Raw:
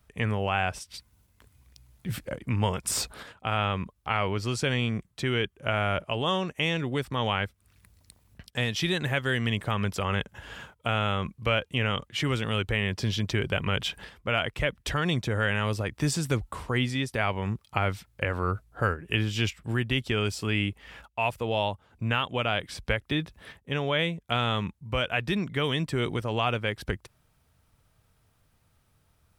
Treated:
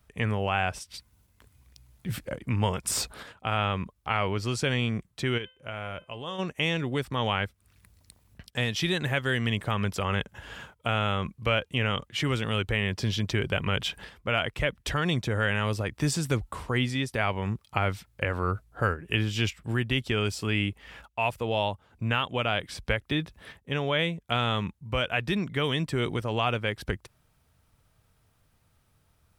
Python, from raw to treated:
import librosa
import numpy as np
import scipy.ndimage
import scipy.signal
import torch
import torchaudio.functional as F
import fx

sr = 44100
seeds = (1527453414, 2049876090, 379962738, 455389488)

y = fx.comb_fb(x, sr, f0_hz=510.0, decay_s=0.34, harmonics='all', damping=0.0, mix_pct=70, at=(5.37, 6.38), fade=0.02)